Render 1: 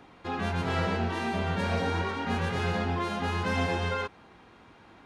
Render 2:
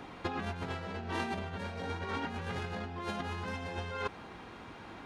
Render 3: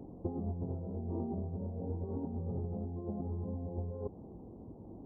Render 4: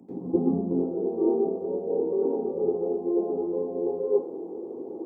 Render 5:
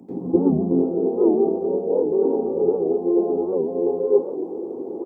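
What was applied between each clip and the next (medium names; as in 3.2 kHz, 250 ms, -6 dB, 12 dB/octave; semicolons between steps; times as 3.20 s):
peak limiter -22.5 dBFS, peak gain reduction 6.5 dB; compressor with a negative ratio -36 dBFS, ratio -0.5
Gaussian low-pass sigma 16 samples; trim +3.5 dB
high-pass sweep 200 Hz -> 400 Hz, 0.41–1.02 s; reverberation RT60 0.50 s, pre-delay 85 ms, DRR -12 dB
delay 264 ms -14 dB; warped record 78 rpm, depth 160 cents; trim +6 dB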